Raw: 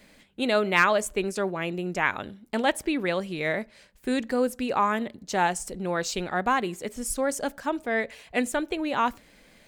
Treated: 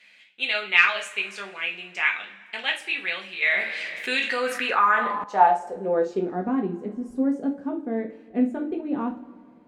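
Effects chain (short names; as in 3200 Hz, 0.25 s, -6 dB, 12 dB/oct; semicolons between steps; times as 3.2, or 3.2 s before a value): two-slope reverb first 0.3 s, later 2.2 s, from -22 dB, DRR 0 dB; band-pass sweep 2600 Hz -> 260 Hz, 4.34–6.49; 3.42–5.24 fast leveller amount 50%; gain +6 dB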